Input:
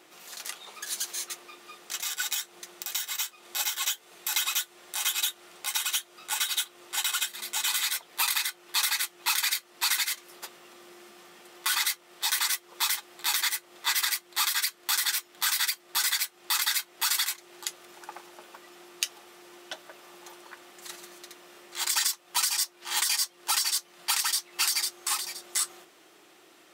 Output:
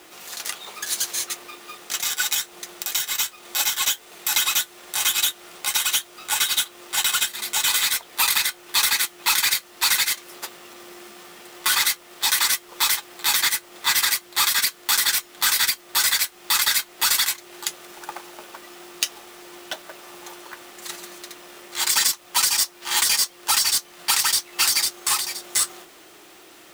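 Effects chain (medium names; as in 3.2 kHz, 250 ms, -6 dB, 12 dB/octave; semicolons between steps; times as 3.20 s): in parallel at -5 dB: hard clipper -24 dBFS, distortion -11 dB; on the sum: companded quantiser 4-bit; trim +3.5 dB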